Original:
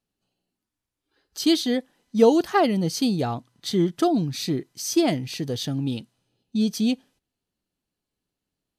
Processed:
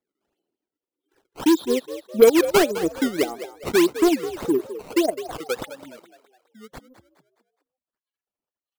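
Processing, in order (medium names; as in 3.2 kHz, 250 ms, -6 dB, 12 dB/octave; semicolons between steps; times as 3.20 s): spectral gate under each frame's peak -15 dB strong; dynamic bell 410 Hz, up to +5 dB, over -36 dBFS, Q 4.9; high-pass sweep 350 Hz -> 1.4 kHz, 4.46–7.36 s; transient shaper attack +2 dB, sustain -11 dB; resonant high shelf 4.4 kHz -7.5 dB, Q 3; in parallel at -4 dB: wavefolder -14 dBFS; on the sum: decimation with a swept rate 15×, swing 160% 1.7 Hz; on a send: frequency-shifting echo 208 ms, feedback 42%, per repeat +65 Hz, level -13 dB; on the sum: trim -5 dB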